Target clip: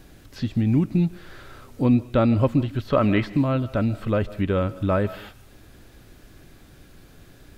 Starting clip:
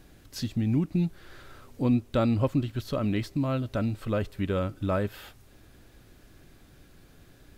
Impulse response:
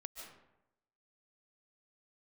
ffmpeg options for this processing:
-filter_complex "[0:a]acrossover=split=3500[link_01][link_02];[link_02]acompressor=threshold=-59dB:ratio=4:attack=1:release=60[link_03];[link_01][link_03]amix=inputs=2:normalize=0,asettb=1/sr,asplit=3[link_04][link_05][link_06];[link_04]atrim=end=2.904[link_07];[link_05]atrim=start=2.9:end=3.42,asetpts=PTS-STARTPTS,afade=type=in:duration=0.004:curve=qsin,afade=type=out:start_time=0.516:duration=0.004:curve=qsin,equalizer=frequency=1200:width_type=o:width=2.9:gain=8[link_08];[link_06]atrim=start=3.416[link_09];[link_07][link_08]acrossfade=duration=0.004:curve1=hsin:curve2=qsin[link_10];[link_10][link_09]acrossfade=duration=0.004:curve1=qsin:curve2=hsin,asplit=2[link_11][link_12];[1:a]atrim=start_sample=2205,afade=type=out:start_time=0.27:duration=0.01,atrim=end_sample=12348[link_13];[link_12][link_13]afir=irnorm=-1:irlink=0,volume=-8.5dB[link_14];[link_11][link_14]amix=inputs=2:normalize=0,volume=4dB"

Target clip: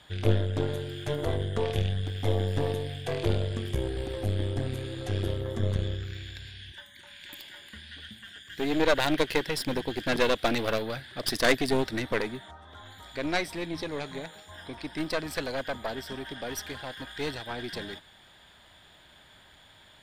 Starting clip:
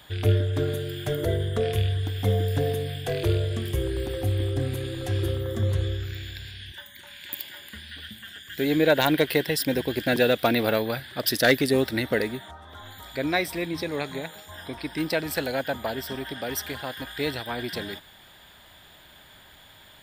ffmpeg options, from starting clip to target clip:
ffmpeg -i in.wav -af "lowpass=9000,aeval=exprs='0.376*(cos(1*acos(clip(val(0)/0.376,-1,1)))-cos(1*PI/2))+0.0944*(cos(4*acos(clip(val(0)/0.376,-1,1)))-cos(4*PI/2))':channel_layout=same,volume=-4dB" out.wav

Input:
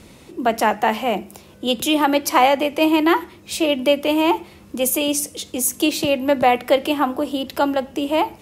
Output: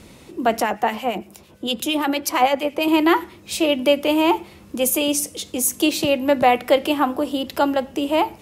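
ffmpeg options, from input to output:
ffmpeg -i in.wav -filter_complex "[0:a]asettb=1/sr,asplit=3[link_01][link_02][link_03];[link_01]atrim=end=0.624[link_04];[link_02]atrim=start=0.62:end=2.88,asetpts=PTS-STARTPTS,afade=type=in:duration=0.004:curve=qsin,afade=type=out:start_time=2.256:duration=0.004:curve=qsin,acrossover=split=1600[link_05][link_06];[link_05]aeval=exprs='val(0)*(1-0.7/2+0.7/2*cos(2*PI*8.8*n/s))':channel_layout=same[link_07];[link_06]aeval=exprs='val(0)*(1-0.7/2-0.7/2*cos(2*PI*8.8*n/s))':channel_layout=same[link_08];[link_07][link_08]amix=inputs=2:normalize=0[link_09];[link_03]atrim=start=2.876[link_10];[link_04][link_09]acrossfade=duration=0.004:curve1=hsin:curve2=qsin[link_11];[link_11][link_10]acrossfade=duration=0.004:curve1=qsin:curve2=hsin" out.wav

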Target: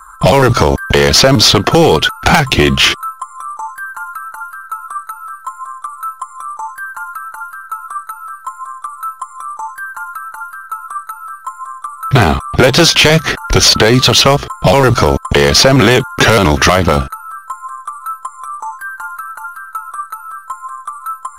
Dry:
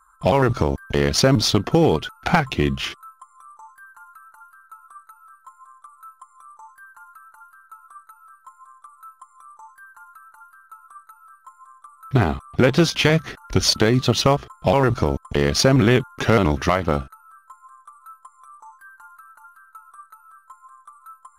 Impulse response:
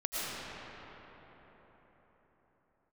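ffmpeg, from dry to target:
-filter_complex "[0:a]acrossover=split=450|3500[link_01][link_02][link_03];[link_01]acompressor=threshold=-29dB:ratio=4[link_04];[link_02]acompressor=threshold=-26dB:ratio=4[link_05];[link_03]acompressor=threshold=-28dB:ratio=4[link_06];[link_04][link_05][link_06]amix=inputs=3:normalize=0,apsyclip=22dB,volume=-1.5dB"

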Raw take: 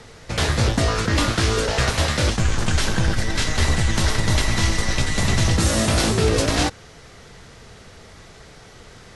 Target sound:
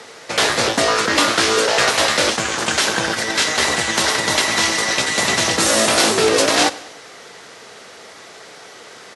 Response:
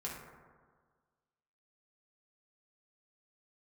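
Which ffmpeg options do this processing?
-af "highpass=380,aecho=1:1:99|198|297|396:0.106|0.053|0.0265|0.0132,volume=7.5dB"

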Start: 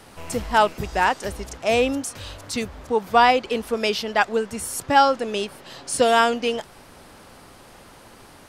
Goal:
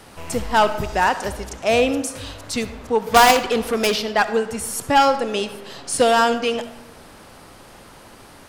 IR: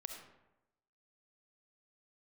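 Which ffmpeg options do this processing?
-filter_complex "[0:a]asoftclip=type=hard:threshold=-11dB,asettb=1/sr,asplit=3[link_01][link_02][link_03];[link_01]atrim=end=3.124[link_04];[link_02]atrim=start=3.12:end=3.96,asetpts=PTS-STARTPTS,afade=type=in:duration=0.004:curve=qsin,afade=type=out:start_time=0.836:duration=0.004:curve=qsin,aeval=exprs='0.282*(cos(1*acos(clip(val(0)/0.282,-1,1)))-cos(1*PI/2))+0.0794*(cos(3*acos(clip(val(0)/0.282,-1,1)))-cos(3*PI/2))+0.112*(cos(5*acos(clip(val(0)/0.282,-1,1)))-cos(5*PI/2))+0.02*(cos(7*acos(clip(val(0)/0.282,-1,1)))-cos(7*PI/2))':channel_layout=same[link_05];[link_03]atrim=start=3.956[link_06];[link_04][link_05]acrossfade=duration=0.004:curve1=hsin:curve2=qsin[link_07];[link_07][link_06]acrossfade=duration=0.004:curve1=qsin:curve2=hsin,asplit=2[link_08][link_09];[1:a]atrim=start_sample=2205[link_10];[link_09][link_10]afir=irnorm=-1:irlink=0,volume=0.5dB[link_11];[link_08][link_11]amix=inputs=2:normalize=0,volume=-2dB"

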